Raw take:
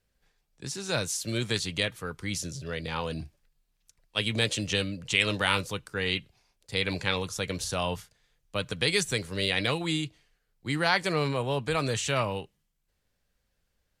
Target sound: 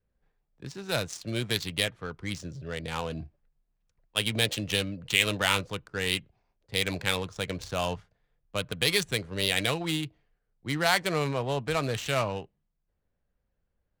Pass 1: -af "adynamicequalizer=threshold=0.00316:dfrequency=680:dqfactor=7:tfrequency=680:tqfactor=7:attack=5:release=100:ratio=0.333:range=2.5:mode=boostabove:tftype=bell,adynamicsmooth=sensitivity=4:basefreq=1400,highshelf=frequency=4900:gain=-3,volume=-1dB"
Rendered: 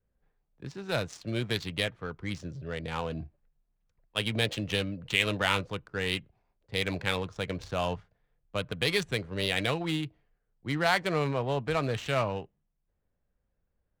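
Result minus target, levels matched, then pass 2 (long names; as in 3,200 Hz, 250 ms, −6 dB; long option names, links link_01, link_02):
8,000 Hz band −7.0 dB
-af "adynamicequalizer=threshold=0.00316:dfrequency=680:dqfactor=7:tfrequency=680:tqfactor=7:attack=5:release=100:ratio=0.333:range=2.5:mode=boostabove:tftype=bell,adynamicsmooth=sensitivity=4:basefreq=1400,highshelf=frequency=4900:gain=9,volume=-1dB"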